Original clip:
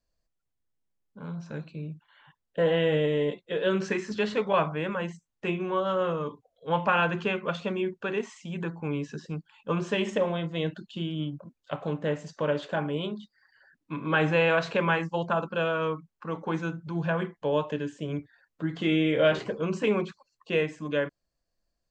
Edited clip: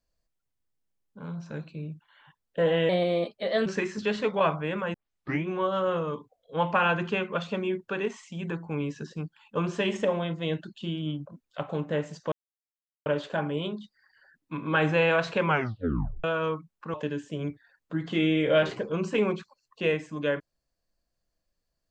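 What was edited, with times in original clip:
0:02.89–0:03.79: play speed 117%
0:05.07: tape start 0.51 s
0:12.45: splice in silence 0.74 s
0:14.86: tape stop 0.77 s
0:16.33–0:17.63: remove

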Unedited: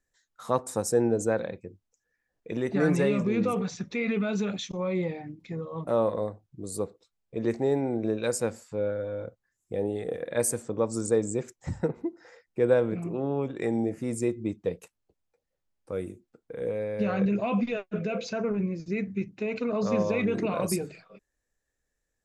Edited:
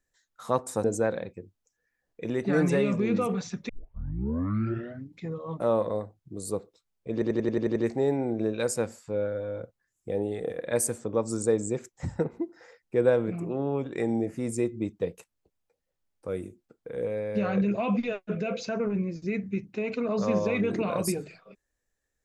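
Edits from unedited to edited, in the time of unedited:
0:00.84–0:01.11: remove
0:03.96: tape start 1.50 s
0:07.40: stutter 0.09 s, 8 plays

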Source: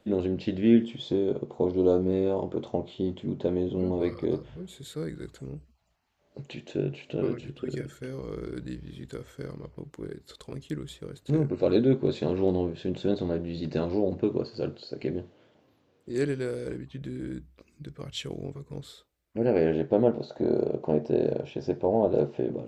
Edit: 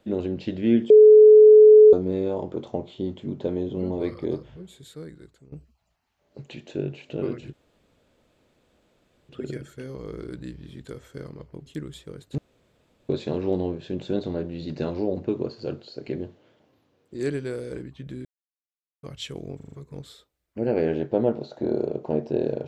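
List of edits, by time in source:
0:00.90–0:01.93: beep over 428 Hz −7 dBFS
0:04.39–0:05.52: fade out linear, to −15.5 dB
0:07.53: splice in room tone 1.76 s
0:09.90–0:10.61: remove
0:11.33–0:12.04: fill with room tone
0:17.20–0:17.98: silence
0:18.51: stutter 0.04 s, 5 plays

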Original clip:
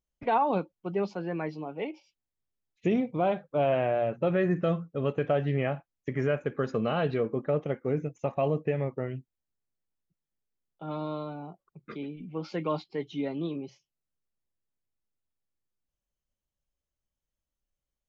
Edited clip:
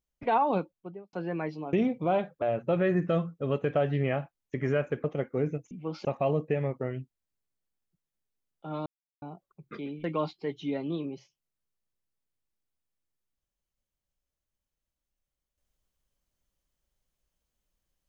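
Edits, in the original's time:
0:00.60–0:01.13: fade out and dull
0:01.73–0:02.86: remove
0:03.55–0:03.96: remove
0:06.58–0:07.55: remove
0:11.03–0:11.39: silence
0:12.21–0:12.55: move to 0:08.22

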